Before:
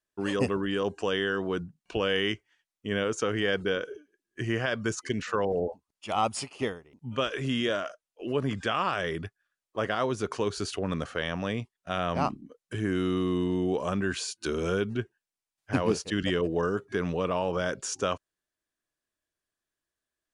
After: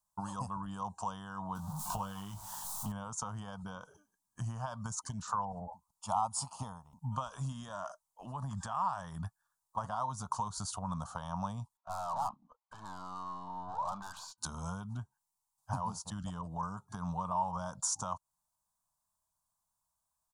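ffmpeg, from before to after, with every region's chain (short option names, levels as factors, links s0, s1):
-filter_complex "[0:a]asettb=1/sr,asplit=3[s0][s1][s2];[s0]atrim=end=1.554[s3];[s1]atrim=start=1.55:end=2.92,asetpts=PTS-STARTPTS,afade=t=in:d=0.004:c=qsin,afade=t=out:st=1.366:d=0.004:c=qsin,aeval=exprs='val(0)+0.5*0.0119*sgn(val(0))':c=same,asplit=2[s4][s5];[s5]adelay=20,volume=0.501[s6];[s4][s6]amix=inputs=2:normalize=0,atrim=end_sample=60417[s7];[s2]atrim=start=2.916[s8];[s3][s7]acrossfade=d=0.004:c1=hsin:c2=qsin[s9];[s9][s8]acrossfade=d=0.004:c1=qsin:c2=hsin,asettb=1/sr,asplit=3[s10][s11][s12];[s10]atrim=end=7.524[s13];[s11]atrim=start=7.52:end=9.84,asetpts=PTS-STARTPTS,afade=t=in:d=0.004:c=qsin,afade=t=out:st=2.316:d=0.004:c=qsin,acompressor=threshold=0.0282:ratio=2:attack=3.2:release=140:knee=1:detection=peak,equalizer=f=1800:t=o:w=0.3:g=9.5[s14];[s12]atrim=start=9.836[s15];[s13][s14]acrossfade=d=0.004:c1=hsin:c2=qsin[s16];[s16][s15]acrossfade=d=0.004:c1=qsin:c2=hsin,asettb=1/sr,asplit=3[s17][s18][s19];[s17]atrim=end=11.774[s20];[s18]atrim=start=11.77:end=14.38,asetpts=PTS-STARTPTS,afade=t=in:d=0.004:c=qsin,afade=t=out:st=2.606:d=0.004:c=qsin,highpass=540,lowpass=2500,aeval=exprs='(tanh(70.8*val(0)+0.25)-tanh(0.25))/70.8':c=same[s21];[s19]atrim=start=14.376[s22];[s20][s21]acrossfade=d=0.004:c1=hsin:c2=qsin[s23];[s23][s22]acrossfade=d=0.004:c1=qsin:c2=hsin,acompressor=threshold=0.02:ratio=10,firequalizer=gain_entry='entry(180,0);entry(370,-30);entry(630,-5);entry(920,11);entry(2000,-30);entry(3700,-8);entry(7400,4)':delay=0.05:min_phase=1,volume=1.5"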